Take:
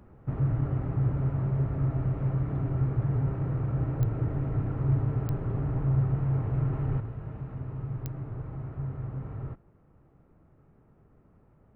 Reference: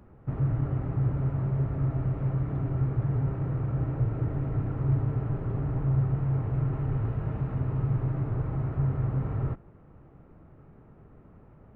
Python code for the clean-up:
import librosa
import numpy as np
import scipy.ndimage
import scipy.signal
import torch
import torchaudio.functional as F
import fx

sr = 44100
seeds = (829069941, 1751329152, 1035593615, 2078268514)

y = fx.fix_declick_ar(x, sr, threshold=10.0)
y = fx.gain(y, sr, db=fx.steps((0.0, 0.0), (7.0, 7.5)))